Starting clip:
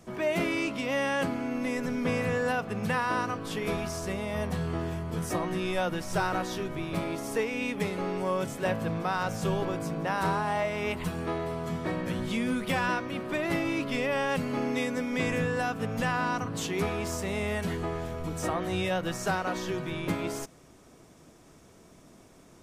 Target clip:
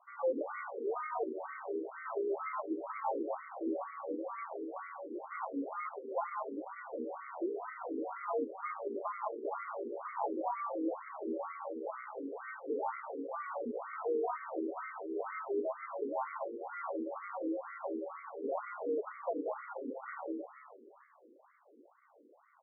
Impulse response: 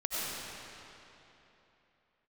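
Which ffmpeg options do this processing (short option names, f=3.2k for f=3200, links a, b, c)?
-filter_complex "[0:a]highpass=f=200:t=q:w=0.5412,highpass=f=200:t=q:w=1.307,lowpass=f=2.4k:t=q:w=0.5176,lowpass=f=2.4k:t=q:w=0.7071,lowpass=f=2.4k:t=q:w=1.932,afreqshift=-92,acrusher=samples=26:mix=1:aa=0.000001,asoftclip=type=tanh:threshold=-23.5dB,asplit=2[a][b];[b]asplit=5[c][d][e][f][g];[c]adelay=311,afreqshift=-83,volume=-11dB[h];[d]adelay=622,afreqshift=-166,volume=-16.8dB[i];[e]adelay=933,afreqshift=-249,volume=-22.7dB[j];[f]adelay=1244,afreqshift=-332,volume=-28.5dB[k];[g]adelay=1555,afreqshift=-415,volume=-34.4dB[l];[h][i][j][k][l]amix=inputs=5:normalize=0[m];[a][m]amix=inputs=2:normalize=0,afftfilt=real='re*between(b*sr/1024,350*pow(1600/350,0.5+0.5*sin(2*PI*2.1*pts/sr))/1.41,350*pow(1600/350,0.5+0.5*sin(2*PI*2.1*pts/sr))*1.41)':imag='im*between(b*sr/1024,350*pow(1600/350,0.5+0.5*sin(2*PI*2.1*pts/sr))/1.41,350*pow(1600/350,0.5+0.5*sin(2*PI*2.1*pts/sr))*1.41)':win_size=1024:overlap=0.75,volume=1dB"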